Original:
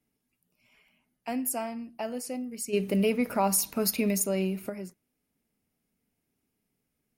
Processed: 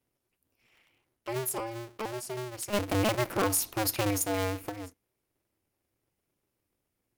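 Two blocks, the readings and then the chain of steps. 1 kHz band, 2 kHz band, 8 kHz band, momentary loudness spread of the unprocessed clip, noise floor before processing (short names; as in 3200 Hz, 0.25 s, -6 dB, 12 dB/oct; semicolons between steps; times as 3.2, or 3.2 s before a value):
0.0 dB, +3.0 dB, -1.5 dB, 12 LU, -81 dBFS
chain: cycle switcher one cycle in 2, inverted; gain -2 dB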